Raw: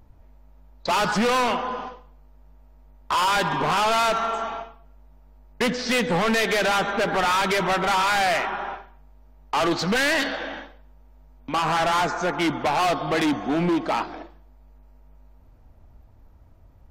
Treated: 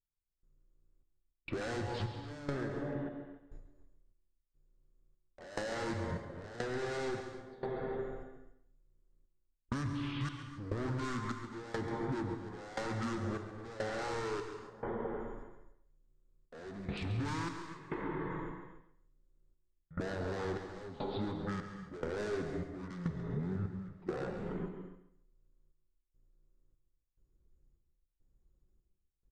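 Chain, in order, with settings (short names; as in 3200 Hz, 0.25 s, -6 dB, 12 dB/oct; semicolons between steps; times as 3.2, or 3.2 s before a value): gate with hold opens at -37 dBFS; bell 1200 Hz -12 dB 1.1 oct; speed mistake 78 rpm record played at 45 rpm; step gate ".....xxxxxxx" 175 bpm -24 dB; compressor 10:1, threshold -38 dBFS, peak gain reduction 17 dB; bell 2700 Hz -10.5 dB 0.92 oct; on a send: feedback echo 0.137 s, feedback 24%, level -11.5 dB; on the sum: non-linear reverb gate 0.32 s flat, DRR 7 dB; gain +3 dB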